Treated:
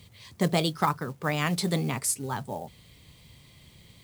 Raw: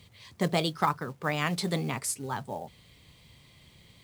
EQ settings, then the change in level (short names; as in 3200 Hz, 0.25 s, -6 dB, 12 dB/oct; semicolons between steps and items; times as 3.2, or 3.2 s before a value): low shelf 400 Hz +4 dB; high shelf 6100 Hz +6.5 dB; 0.0 dB